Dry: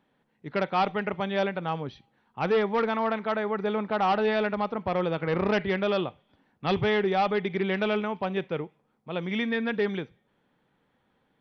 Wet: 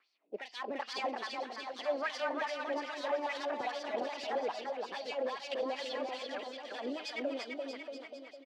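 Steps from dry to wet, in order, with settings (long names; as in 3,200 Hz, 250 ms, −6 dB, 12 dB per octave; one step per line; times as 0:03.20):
high-pass filter 170 Hz 12 dB per octave
high-shelf EQ 2,700 Hz +5.5 dB
in parallel at +2 dB: brickwall limiter −22 dBFS, peak gain reduction 10.5 dB
on the sum: downward compressor 16 to 1, threshold −22 dBFS, peak gain reduction 8 dB
gain into a clipping stage and back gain 24.5 dB
rotating-speaker cabinet horn 0.6 Hz, later 7 Hz, at 0:07.21
LFO wah 1.8 Hz 280–3,900 Hz, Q 2.4
pitch-shifted copies added +4 semitones −16 dB
bouncing-ball delay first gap 460 ms, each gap 0.85×, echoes 5
wrong playback speed 33 rpm record played at 45 rpm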